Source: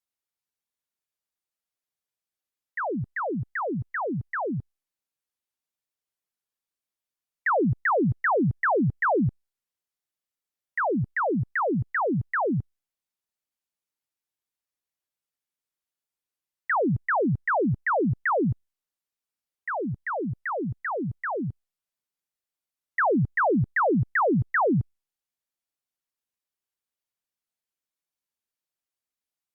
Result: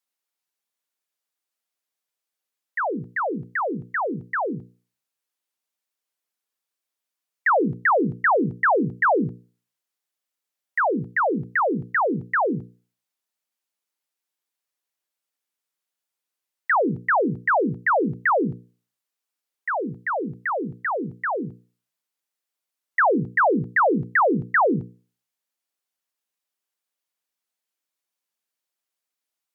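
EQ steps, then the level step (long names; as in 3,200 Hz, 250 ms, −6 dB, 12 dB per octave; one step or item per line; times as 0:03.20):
high-pass filter 160 Hz 12 dB per octave
low-shelf EQ 220 Hz −6.5 dB
mains-hum notches 60/120/180/240/300/360/420/480 Hz
+5.0 dB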